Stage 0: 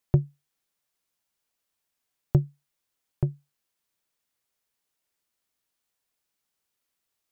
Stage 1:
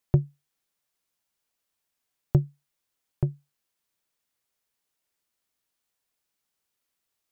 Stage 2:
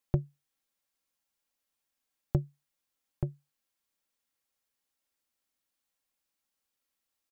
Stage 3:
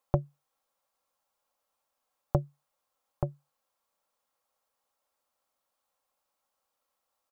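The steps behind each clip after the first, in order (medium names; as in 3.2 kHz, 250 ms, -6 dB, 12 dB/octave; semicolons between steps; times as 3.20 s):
no audible change
comb 3.7 ms, depth 37%; trim -4 dB
high-order bell 800 Hz +12 dB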